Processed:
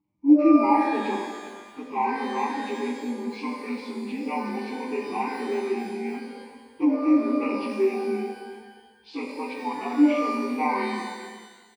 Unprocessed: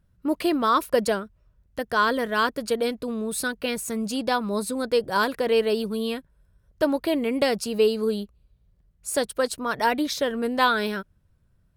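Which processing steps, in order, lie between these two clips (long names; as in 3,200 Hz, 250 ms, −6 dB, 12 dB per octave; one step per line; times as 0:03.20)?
partials spread apart or drawn together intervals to 80%
formant filter u
on a send: single-tap delay 385 ms −15 dB
on the sum: reverb with rising layers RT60 1.3 s, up +12 semitones, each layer −8 dB, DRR 1.5 dB
level +8 dB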